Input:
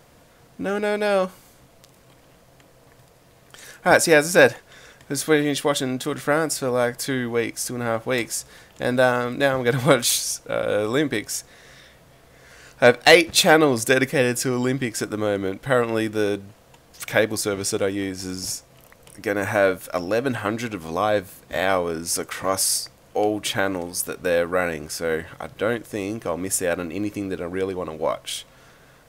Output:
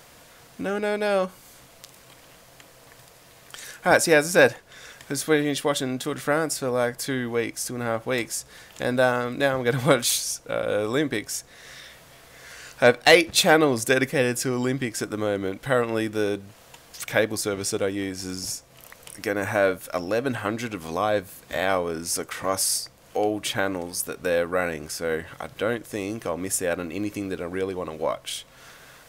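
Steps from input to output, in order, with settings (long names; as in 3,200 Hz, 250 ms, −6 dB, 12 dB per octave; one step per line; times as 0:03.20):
one half of a high-frequency compander encoder only
level −2.5 dB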